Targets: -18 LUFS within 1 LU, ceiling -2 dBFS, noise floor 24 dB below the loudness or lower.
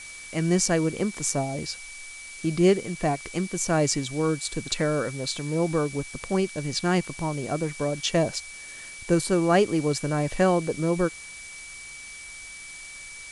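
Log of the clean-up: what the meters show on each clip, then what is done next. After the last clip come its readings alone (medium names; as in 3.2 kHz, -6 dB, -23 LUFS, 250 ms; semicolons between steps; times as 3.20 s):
steady tone 2.3 kHz; tone level -41 dBFS; noise floor -42 dBFS; noise floor target -50 dBFS; loudness -25.5 LUFS; peak level -7.5 dBFS; loudness target -18.0 LUFS
-> band-stop 2.3 kHz, Q 30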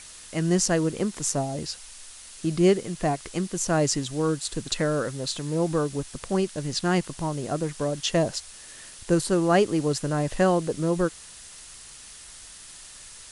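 steady tone not found; noise floor -45 dBFS; noise floor target -50 dBFS
-> noise print and reduce 6 dB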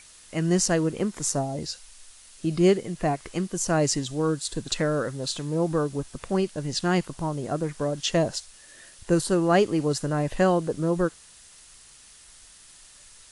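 noise floor -51 dBFS; loudness -26.0 LUFS; peak level -7.5 dBFS; loudness target -18.0 LUFS
-> trim +8 dB; peak limiter -2 dBFS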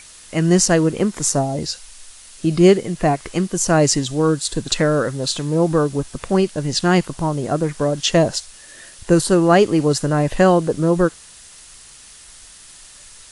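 loudness -18.0 LUFS; peak level -2.0 dBFS; noise floor -43 dBFS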